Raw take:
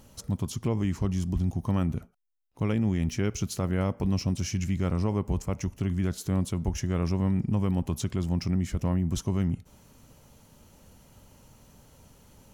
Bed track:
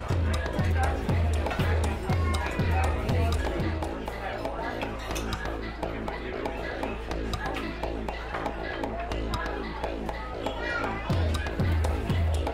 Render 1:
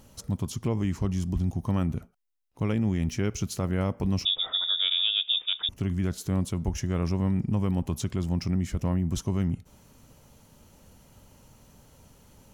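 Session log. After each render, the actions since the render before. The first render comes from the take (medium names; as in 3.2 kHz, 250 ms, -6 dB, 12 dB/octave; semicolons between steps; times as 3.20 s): 4.25–5.69 s: frequency inversion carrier 3.6 kHz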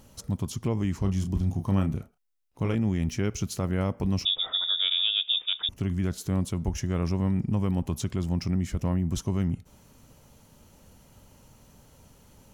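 1.02–2.75 s: doubling 31 ms -7.5 dB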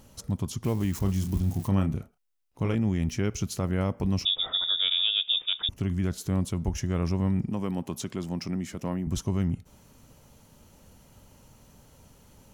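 0.64–1.68 s: zero-crossing glitches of -32 dBFS; 4.39–5.70 s: bass shelf 370 Hz +7.5 dB; 7.48–9.07 s: high-pass 190 Hz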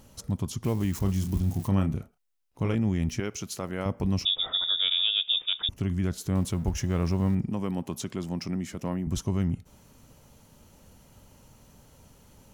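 3.20–3.86 s: high-pass 370 Hz 6 dB/octave; 6.35–7.35 s: companding laws mixed up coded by mu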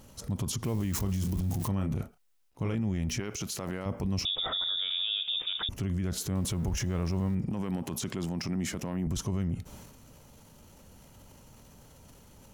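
transient shaper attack -2 dB, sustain +8 dB; peak limiter -23.5 dBFS, peak gain reduction 9.5 dB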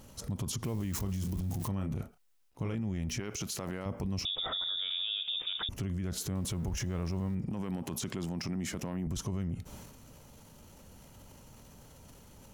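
compression 2:1, threshold -34 dBFS, peak gain reduction 4.5 dB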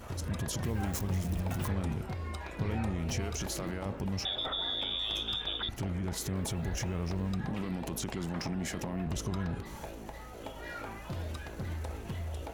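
add bed track -12 dB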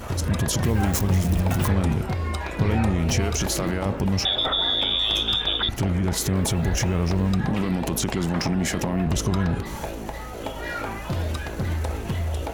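trim +11.5 dB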